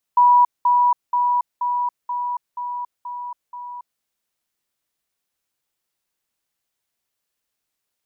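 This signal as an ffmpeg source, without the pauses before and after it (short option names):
-f lavfi -i "aevalsrc='pow(10,(-9.5-3*floor(t/0.48))/20)*sin(2*PI*976*t)*clip(min(mod(t,0.48),0.28-mod(t,0.48))/0.005,0,1)':d=3.84:s=44100"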